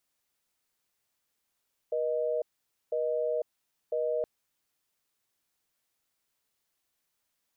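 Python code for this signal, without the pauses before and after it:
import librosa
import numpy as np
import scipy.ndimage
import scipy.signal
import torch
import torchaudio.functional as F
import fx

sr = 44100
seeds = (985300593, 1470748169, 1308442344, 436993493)

y = fx.call_progress(sr, length_s=2.32, kind='busy tone', level_db=-29.5)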